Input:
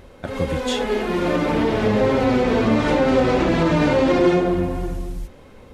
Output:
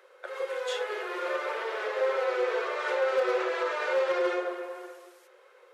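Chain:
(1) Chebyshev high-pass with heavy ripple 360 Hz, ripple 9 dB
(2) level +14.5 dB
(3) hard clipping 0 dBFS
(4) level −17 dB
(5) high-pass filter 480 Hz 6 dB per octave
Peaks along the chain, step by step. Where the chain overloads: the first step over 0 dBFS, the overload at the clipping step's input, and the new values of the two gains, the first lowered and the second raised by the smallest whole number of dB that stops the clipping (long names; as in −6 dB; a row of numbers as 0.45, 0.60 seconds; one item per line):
−10.0, +4.5, 0.0, −17.0, −15.5 dBFS
step 2, 4.5 dB
step 2 +9.5 dB, step 4 −12 dB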